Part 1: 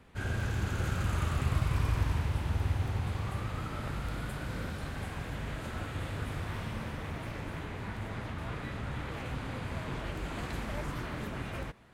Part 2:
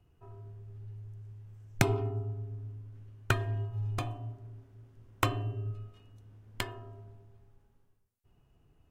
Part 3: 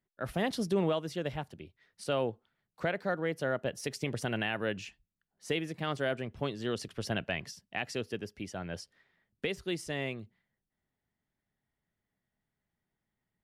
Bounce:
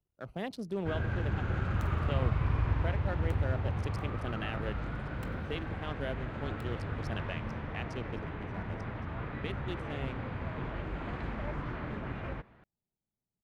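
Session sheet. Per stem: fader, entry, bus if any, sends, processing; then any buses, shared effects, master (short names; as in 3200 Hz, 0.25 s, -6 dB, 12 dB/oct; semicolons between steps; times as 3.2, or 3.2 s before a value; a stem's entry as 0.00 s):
0.0 dB, 0.70 s, no send, no echo send, LPF 2200 Hz 12 dB/oct
-19.5 dB, 0.00 s, no send, no echo send, cycle switcher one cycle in 2, muted; high shelf 11000 Hz +8 dB
-6.0 dB, 0.00 s, no send, echo send -20 dB, Wiener smoothing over 25 samples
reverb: off
echo: echo 1.116 s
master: dry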